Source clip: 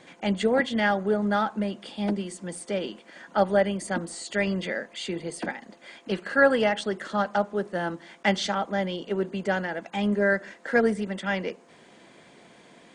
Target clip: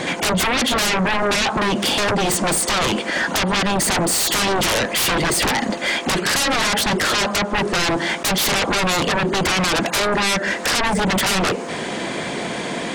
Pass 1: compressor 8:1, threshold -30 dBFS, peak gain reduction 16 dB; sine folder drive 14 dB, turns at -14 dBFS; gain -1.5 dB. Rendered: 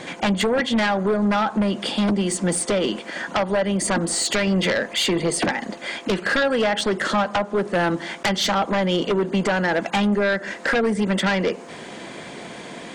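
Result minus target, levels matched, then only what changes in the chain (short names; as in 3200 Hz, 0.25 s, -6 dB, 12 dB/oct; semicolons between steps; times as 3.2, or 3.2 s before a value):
sine folder: distortion -24 dB
change: sine folder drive 25 dB, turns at -14 dBFS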